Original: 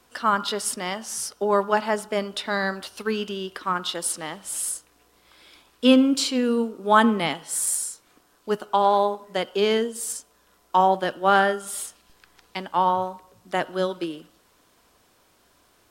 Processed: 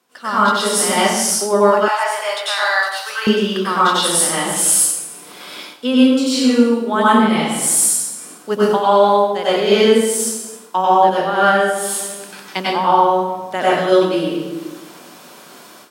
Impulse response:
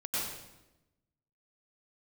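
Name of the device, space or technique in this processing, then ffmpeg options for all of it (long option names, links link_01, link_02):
far laptop microphone: -filter_complex "[1:a]atrim=start_sample=2205[link_01];[0:a][link_01]afir=irnorm=-1:irlink=0,highpass=frequency=160:width=0.5412,highpass=frequency=160:width=1.3066,dynaudnorm=framelen=170:gausssize=3:maxgain=16.5dB,asettb=1/sr,asplit=3[link_02][link_03][link_04];[link_02]atrim=end=1.884[link_05];[link_03]atrim=start=1.88:end=3.27,asetpts=PTS-STARTPTS,afade=type=in:duration=0.004:curve=qsin,afade=type=out:start_time=1.386:duration=0.004:curve=qsin,highpass=frequency=730:width=0.5412,highpass=frequency=730:width=1.3066[link_06];[link_04]atrim=start=3.266[link_07];[link_05][link_06]acrossfade=duration=0.004:curve1=hsin:curve2=qsin[link_08];[link_08][link_07]acrossfade=duration=0.004:curve1=qsin:curve2=hsin,volume=-1dB"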